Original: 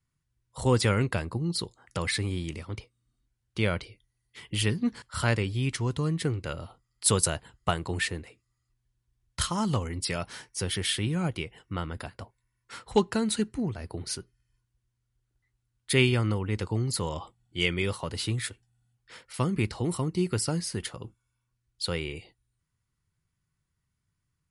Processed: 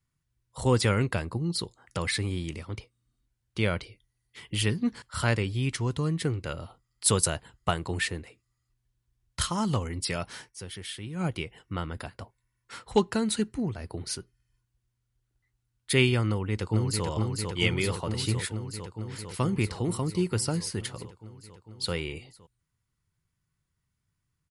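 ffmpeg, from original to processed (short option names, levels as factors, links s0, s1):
-filter_complex "[0:a]asplit=2[s0][s1];[s1]afade=t=in:st=16.28:d=0.01,afade=t=out:st=17.06:d=0.01,aecho=0:1:450|900|1350|1800|2250|2700|3150|3600|4050|4500|4950|5400:0.668344|0.534675|0.42774|0.342192|0.273754|0.219003|0.175202|0.140162|0.11213|0.0897036|0.0717629|0.0574103[s2];[s0][s2]amix=inputs=2:normalize=0,asplit=3[s3][s4][s5];[s3]atrim=end=10.82,asetpts=PTS-STARTPTS,afade=t=out:st=10.48:d=0.34:c=exp:silence=0.316228[s6];[s4]atrim=start=10.82:end=10.87,asetpts=PTS-STARTPTS,volume=0.316[s7];[s5]atrim=start=10.87,asetpts=PTS-STARTPTS,afade=t=in:d=0.34:c=exp:silence=0.316228[s8];[s6][s7][s8]concat=n=3:v=0:a=1"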